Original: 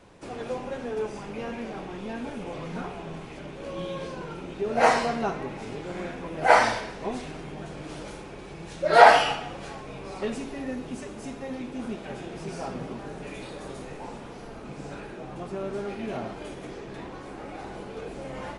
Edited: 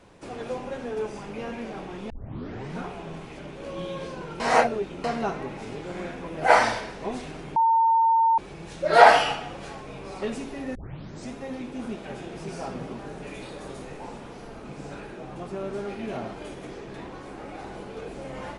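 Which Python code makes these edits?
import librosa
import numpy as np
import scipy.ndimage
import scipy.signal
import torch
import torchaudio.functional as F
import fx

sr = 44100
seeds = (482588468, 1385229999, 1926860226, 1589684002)

y = fx.edit(x, sr, fx.tape_start(start_s=2.1, length_s=0.66),
    fx.reverse_span(start_s=4.4, length_s=0.64),
    fx.bleep(start_s=7.56, length_s=0.82, hz=907.0, db=-16.5),
    fx.tape_start(start_s=10.75, length_s=0.57), tone=tone)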